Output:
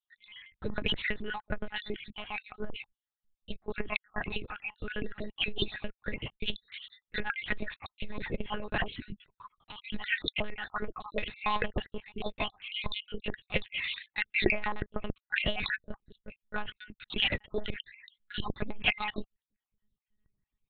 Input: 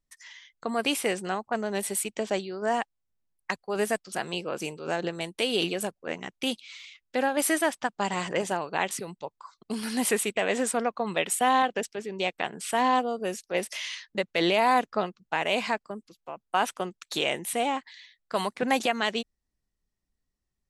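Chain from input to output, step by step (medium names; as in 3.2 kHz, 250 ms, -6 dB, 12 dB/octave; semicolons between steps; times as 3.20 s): random holes in the spectrogram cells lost 57%; monotone LPC vocoder at 8 kHz 210 Hz; peaking EQ 790 Hz -10 dB 2.1 oct; transformer saturation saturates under 460 Hz; trim +6.5 dB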